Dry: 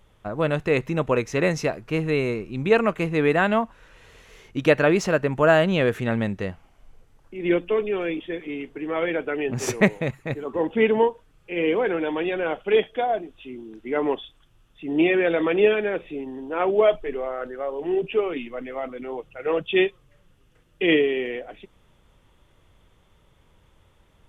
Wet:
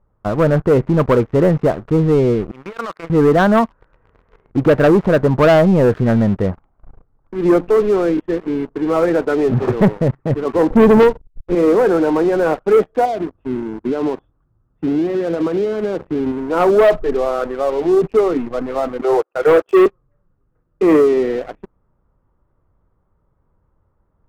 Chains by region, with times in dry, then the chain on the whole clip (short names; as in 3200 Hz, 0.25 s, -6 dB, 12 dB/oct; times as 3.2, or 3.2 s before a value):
2.51–3.1 G.711 law mismatch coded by A + band-pass 2100 Hz, Q 1.2 + negative-ratio compressor -34 dBFS
10.7–11.55 backlash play -44.5 dBFS + tilt -3.5 dB/oct
13.05–16.32 HPF 60 Hz + compressor 10:1, threshold -29 dBFS + tilt -2 dB/oct
19.01–19.86 Chebyshev band-pass 360–3300 Hz, order 4 + sample leveller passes 2
whole clip: Chebyshev low-pass 1300 Hz, order 3; low shelf 250 Hz +2.5 dB; sample leveller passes 3